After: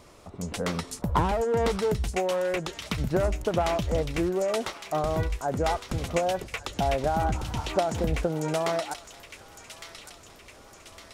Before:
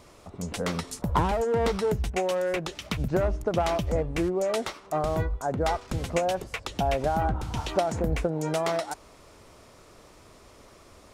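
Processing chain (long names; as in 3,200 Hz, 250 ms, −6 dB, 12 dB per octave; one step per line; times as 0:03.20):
delay with a high-pass on its return 1,159 ms, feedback 54%, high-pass 2,100 Hz, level −6.5 dB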